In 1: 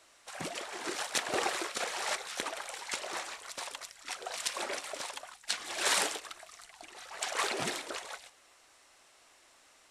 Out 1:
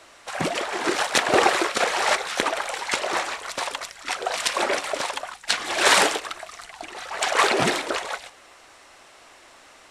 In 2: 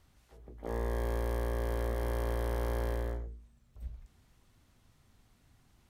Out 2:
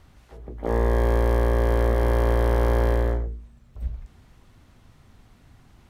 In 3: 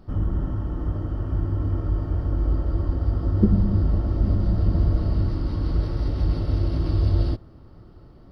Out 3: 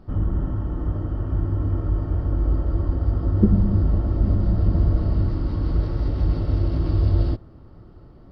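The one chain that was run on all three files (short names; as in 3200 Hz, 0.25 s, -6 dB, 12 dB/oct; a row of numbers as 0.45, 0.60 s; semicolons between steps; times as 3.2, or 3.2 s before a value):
high shelf 4100 Hz -9 dB; match loudness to -23 LUFS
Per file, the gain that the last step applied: +15.0, +12.5, +1.5 dB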